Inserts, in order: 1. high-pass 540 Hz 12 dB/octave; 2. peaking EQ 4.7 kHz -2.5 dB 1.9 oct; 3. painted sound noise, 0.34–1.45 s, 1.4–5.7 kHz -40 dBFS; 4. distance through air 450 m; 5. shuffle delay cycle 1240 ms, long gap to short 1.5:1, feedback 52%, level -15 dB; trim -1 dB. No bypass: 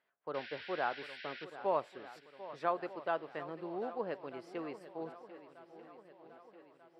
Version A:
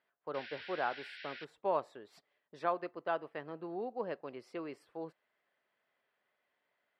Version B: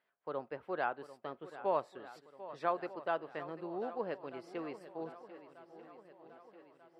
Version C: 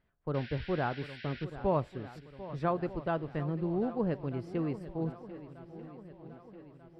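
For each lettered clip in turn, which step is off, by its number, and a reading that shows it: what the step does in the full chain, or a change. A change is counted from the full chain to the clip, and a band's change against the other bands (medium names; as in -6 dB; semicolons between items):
5, echo-to-direct -12.0 dB to none; 3, 4 kHz band -6.5 dB; 1, 125 Hz band +21.0 dB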